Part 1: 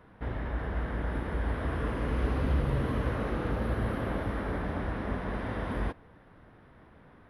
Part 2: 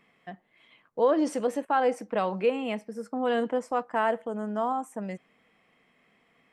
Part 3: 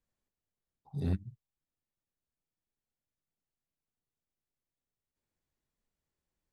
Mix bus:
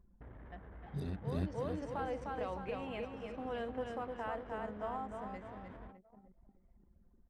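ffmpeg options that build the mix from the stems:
ffmpeg -i stem1.wav -i stem2.wav -i stem3.wav -filter_complex "[0:a]alimiter=level_in=5dB:limit=-24dB:level=0:latency=1:release=352,volume=-5dB,volume=-14.5dB[link_01];[1:a]lowpass=5800,adelay=250,volume=-11.5dB,asplit=2[link_02][link_03];[link_03]volume=-7dB[link_04];[2:a]lowshelf=frequency=120:gain=-8,dynaudnorm=framelen=480:gausssize=3:maxgain=10dB,volume=-5.5dB,asplit=3[link_05][link_06][link_07];[link_06]volume=-5.5dB[link_08];[link_07]apad=whole_len=298668[link_09];[link_02][link_09]sidechaincompress=threshold=-36dB:ratio=8:attack=5.2:release=1000[link_10];[link_10][link_05]amix=inputs=2:normalize=0,asubboost=boost=10:cutoff=51,alimiter=level_in=7.5dB:limit=-24dB:level=0:latency=1:release=114,volume=-7.5dB,volume=0dB[link_11];[link_04][link_08]amix=inputs=2:normalize=0,aecho=0:1:304|608|912|1216|1520|1824:1|0.45|0.202|0.0911|0.041|0.0185[link_12];[link_01][link_11][link_12]amix=inputs=3:normalize=0,anlmdn=0.000158,highshelf=frequency=4400:gain=2,acompressor=mode=upward:threshold=-50dB:ratio=2.5" out.wav

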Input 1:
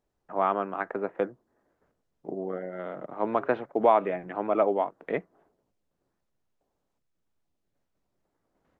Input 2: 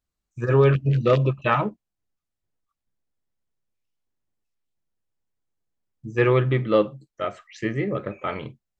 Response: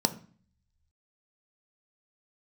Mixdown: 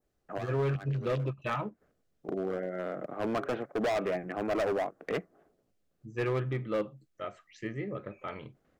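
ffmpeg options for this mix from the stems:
-filter_complex "[0:a]equalizer=frequency=940:width=5.4:gain=-11.5,volume=28dB,asoftclip=hard,volume=-28dB,volume=1.5dB[link_01];[1:a]volume=-11dB,asplit=2[link_02][link_03];[link_03]apad=whole_len=387741[link_04];[link_01][link_04]sidechaincompress=threshold=-50dB:ratio=5:attack=5.9:release=113[link_05];[link_05][link_02]amix=inputs=2:normalize=0,adynamicequalizer=threshold=0.00141:dfrequency=3600:dqfactor=1.7:tfrequency=3600:tqfactor=1.7:attack=5:release=100:ratio=0.375:range=2:mode=cutabove:tftype=bell,asoftclip=type=hard:threshold=-25dB"

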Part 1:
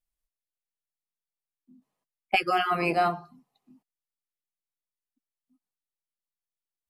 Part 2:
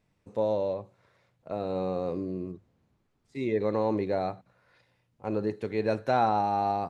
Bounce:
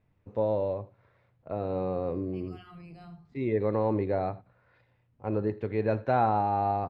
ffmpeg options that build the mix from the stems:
ffmpeg -i stem1.wav -i stem2.wav -filter_complex "[0:a]aemphasis=mode=reproduction:type=bsi,acrossover=split=200|3000[link_01][link_02][link_03];[link_02]acompressor=threshold=-48dB:ratio=2[link_04];[link_01][link_04][link_03]amix=inputs=3:normalize=0,alimiter=level_in=6dB:limit=-24dB:level=0:latency=1,volume=-6dB,volume=-13dB,asplit=2[link_05][link_06];[link_06]volume=-12.5dB[link_07];[1:a]lowpass=2500,equalizer=frequency=180:width_type=o:width=0.4:gain=-4,volume=-0.5dB,asplit=3[link_08][link_09][link_10];[link_09]volume=-21dB[link_11];[link_10]apad=whole_len=303983[link_12];[link_05][link_12]sidechaincompress=threshold=-34dB:ratio=8:attack=16:release=345[link_13];[link_07][link_11]amix=inputs=2:normalize=0,aecho=0:1:81:1[link_14];[link_13][link_08][link_14]amix=inputs=3:normalize=0,equalizer=frequency=84:width_type=o:width=1.7:gain=7.5" out.wav

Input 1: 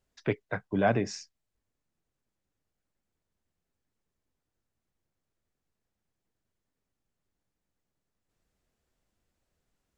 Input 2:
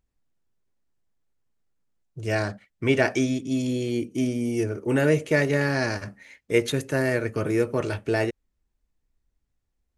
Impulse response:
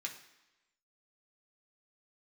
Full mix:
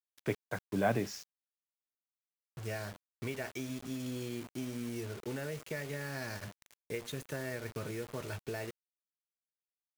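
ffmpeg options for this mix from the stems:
-filter_complex "[0:a]volume=-5dB[link_01];[1:a]adynamicequalizer=threshold=0.0251:dfrequency=480:dqfactor=1.2:tfrequency=480:tqfactor=1.2:attack=5:release=100:ratio=0.375:range=1.5:mode=cutabove:tftype=bell,acompressor=threshold=-26dB:ratio=10,equalizer=frequency=310:width_type=o:width=0.25:gain=-9,adelay=400,volume=-8.5dB[link_02];[link_01][link_02]amix=inputs=2:normalize=0,acrusher=bits=7:mix=0:aa=0.000001"

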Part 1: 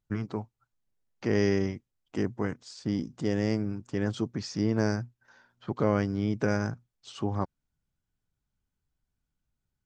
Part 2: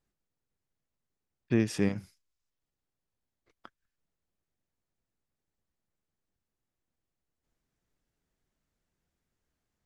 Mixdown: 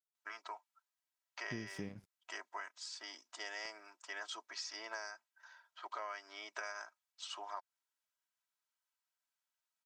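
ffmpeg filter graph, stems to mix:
ffmpeg -i stem1.wav -i stem2.wav -filter_complex "[0:a]highpass=frequency=810:width=0.5412,highpass=frequency=810:width=1.3066,aecho=1:1:3.1:0.65,adelay=150,volume=-1.5dB[link_01];[1:a]aeval=exprs='sgn(val(0))*max(abs(val(0))-0.00251,0)':channel_layout=same,volume=-4.5dB[link_02];[link_01][link_02]amix=inputs=2:normalize=0,acompressor=threshold=-40dB:ratio=8" out.wav

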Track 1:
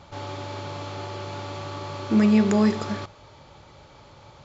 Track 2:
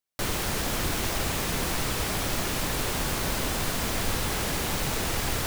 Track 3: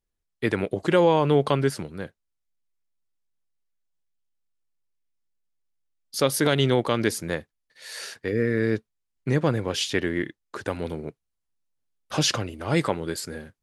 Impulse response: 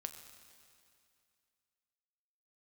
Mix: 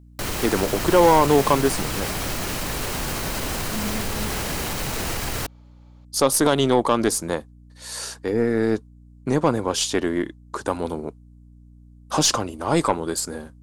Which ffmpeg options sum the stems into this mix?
-filter_complex "[0:a]adelay=1600,volume=-14dB[link_01];[1:a]bandreject=frequency=3500:width=21,alimiter=limit=-19.5dB:level=0:latency=1:release=34,volume=2.5dB[link_02];[2:a]equalizer=frequency=125:width_type=o:width=1:gain=-6,equalizer=frequency=250:width_type=o:width=1:gain=4,equalizer=frequency=1000:width_type=o:width=1:gain=10,equalizer=frequency=2000:width_type=o:width=1:gain=-8,equalizer=frequency=8000:width_type=o:width=1:gain=9,aeval=exprs='val(0)+0.00398*(sin(2*PI*60*n/s)+sin(2*PI*2*60*n/s)/2+sin(2*PI*3*60*n/s)/3+sin(2*PI*4*60*n/s)/4+sin(2*PI*5*60*n/s)/5)':channel_layout=same,aeval=exprs='(tanh(2.82*val(0)+0.3)-tanh(0.3))/2.82':channel_layout=same,volume=2.5dB[link_03];[link_01][link_02][link_03]amix=inputs=3:normalize=0"

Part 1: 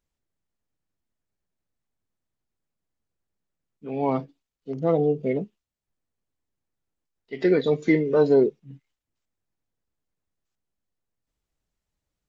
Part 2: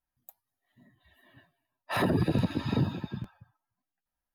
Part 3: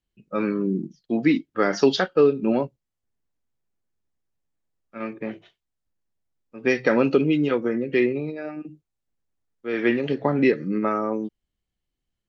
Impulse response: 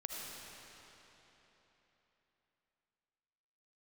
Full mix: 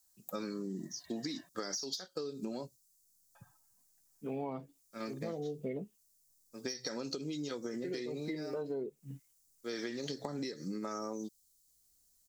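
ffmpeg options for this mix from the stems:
-filter_complex "[0:a]adelay=400,volume=-2.5dB[link_01];[1:a]highpass=170,volume=3dB,asplit=3[link_02][link_03][link_04];[link_02]atrim=end=1.49,asetpts=PTS-STARTPTS,afade=type=out:start_time=1.486:duration=0.004:curve=hsin[link_05];[link_03]atrim=start=1.49:end=3.35,asetpts=PTS-STARTPTS,volume=0[link_06];[link_04]atrim=start=3.35,asetpts=PTS-STARTPTS,afade=type=in:duration=0.004:curve=hsin[link_07];[link_05][link_06][link_07]concat=n=3:v=0:a=1[link_08];[2:a]aexciter=amount=15.8:drive=9.7:freq=4400,acompressor=threshold=-21dB:ratio=6,volume=-9dB,asplit=2[link_09][link_10];[link_10]apad=whole_len=559456[link_11];[link_01][link_11]sidechaincompress=threshold=-46dB:ratio=8:attack=29:release=617[link_12];[link_12][link_08][link_09]amix=inputs=3:normalize=0,acompressor=threshold=-35dB:ratio=12"

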